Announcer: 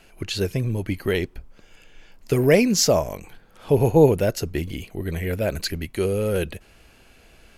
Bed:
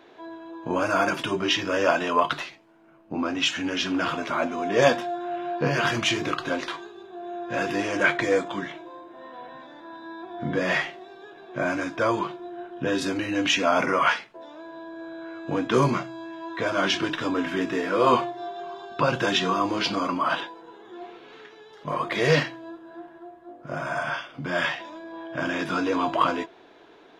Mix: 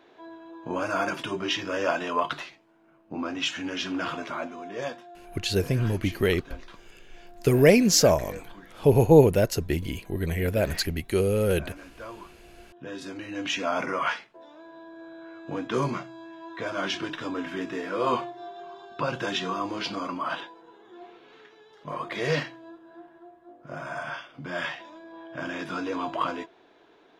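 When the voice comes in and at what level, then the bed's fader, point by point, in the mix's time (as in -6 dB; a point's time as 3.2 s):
5.15 s, -0.5 dB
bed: 4.21 s -4.5 dB
5.03 s -17.5 dB
12.42 s -17.5 dB
13.6 s -6 dB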